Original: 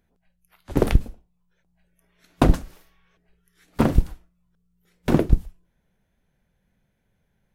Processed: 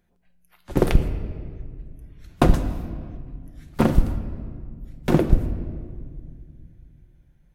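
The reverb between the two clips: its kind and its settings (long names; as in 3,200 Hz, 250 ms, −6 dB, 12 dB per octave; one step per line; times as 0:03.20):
rectangular room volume 3,900 cubic metres, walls mixed, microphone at 0.9 metres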